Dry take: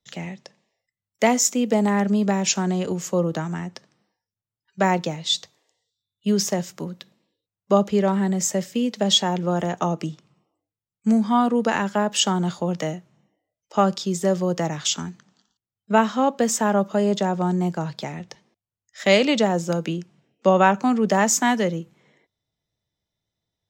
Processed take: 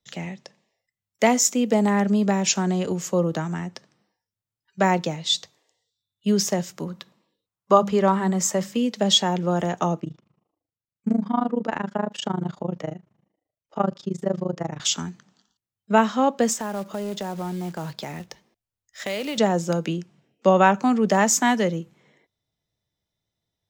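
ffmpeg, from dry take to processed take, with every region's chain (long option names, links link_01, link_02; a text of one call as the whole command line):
ffmpeg -i in.wav -filter_complex "[0:a]asettb=1/sr,asplit=3[link_01][link_02][link_03];[link_01]atrim=end=6.884[link_04];[link_02]atrim=start=6.88:end=8.77,asetpts=PTS-STARTPTS,afade=type=in:duration=0.004:curve=qsin,afade=type=out:start_time=1.886:duration=0.004:curve=qsin,equalizer=frequency=1100:width=2:gain=8.5,bandreject=frequency=50:width_type=h:width=6,bandreject=frequency=100:width_type=h:width=6,bandreject=frequency=150:width_type=h:width=6,bandreject=frequency=200:width_type=h:width=6,bandreject=frequency=250:width_type=h:width=6[link_05];[link_03]atrim=start=8.766[link_06];[link_04][link_05]acrossfade=duration=0.004:curve1=hsin:curve2=qsin[link_07];[link_07][link_06]acrossfade=duration=0.004:curve1=qsin:curve2=hsin,asettb=1/sr,asplit=3[link_08][link_09][link_10];[link_08]atrim=end=10.004[link_11];[link_09]atrim=start=10:end=14.8,asetpts=PTS-STARTPTS,afade=type=in:duration=0.004:curve=qsin,afade=type=out:start_time=4.796:duration=0.004:curve=qsin,tremolo=f=26:d=0.947,lowpass=frequency=1500:poles=1[link_12];[link_10]atrim=start=14.796[link_13];[link_11][link_12]acrossfade=duration=0.004:curve1=hsin:curve2=qsin[link_14];[link_14][link_13]acrossfade=duration=0.004:curve1=qsin:curve2=hsin,asettb=1/sr,asplit=3[link_15][link_16][link_17];[link_15]atrim=end=16.534[link_18];[link_16]atrim=start=16.53:end=19.38,asetpts=PTS-STARTPTS,afade=type=in:duration=0.004:curve=qsin,afade=type=out:start_time=2.846:duration=0.004:curve=qsin,asubboost=boost=6:cutoff=57,acompressor=threshold=-28dB:ratio=3:attack=3.2:release=140:knee=1:detection=peak,acrusher=bits=4:mode=log:mix=0:aa=0.000001[link_19];[link_17]atrim=start=19.376[link_20];[link_18][link_19]acrossfade=duration=0.004:curve1=hsin:curve2=qsin[link_21];[link_21][link_20]acrossfade=duration=0.004:curve1=qsin:curve2=hsin" out.wav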